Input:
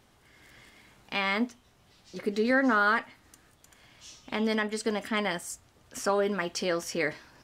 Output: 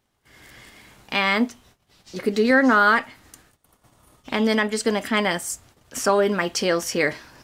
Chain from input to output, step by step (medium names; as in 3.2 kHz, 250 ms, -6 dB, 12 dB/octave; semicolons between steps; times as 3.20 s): spectral replace 3.60–4.22 s, 1.5–9.3 kHz before; gate -59 dBFS, range -18 dB; treble shelf 9.2 kHz +5 dB; trim +7.5 dB